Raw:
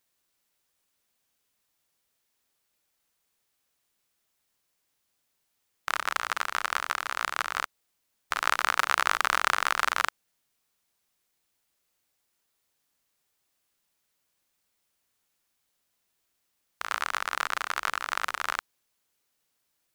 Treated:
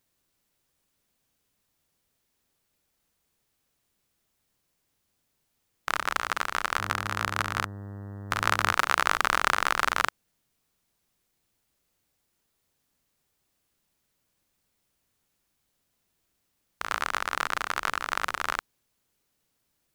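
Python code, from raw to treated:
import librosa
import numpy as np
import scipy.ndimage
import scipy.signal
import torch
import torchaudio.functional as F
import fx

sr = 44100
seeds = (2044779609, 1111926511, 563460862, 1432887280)

y = fx.dmg_buzz(x, sr, base_hz=100.0, harmonics=19, level_db=-48.0, tilt_db=-5, odd_only=False, at=(6.78, 8.72), fade=0.02)
y = fx.low_shelf(y, sr, hz=370.0, db=11.0)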